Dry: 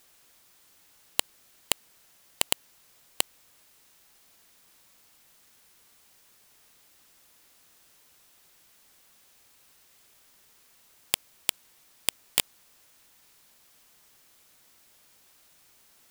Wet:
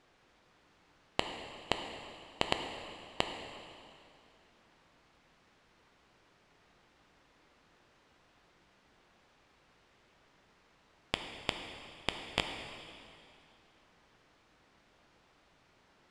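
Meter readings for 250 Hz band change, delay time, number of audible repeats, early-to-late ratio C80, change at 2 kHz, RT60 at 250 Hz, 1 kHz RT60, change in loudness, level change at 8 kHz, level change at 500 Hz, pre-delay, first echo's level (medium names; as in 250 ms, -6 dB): +4.5 dB, no echo, no echo, 6.5 dB, -2.0 dB, 2.5 s, 2.5 s, -9.5 dB, -20.5 dB, +3.5 dB, 4 ms, no echo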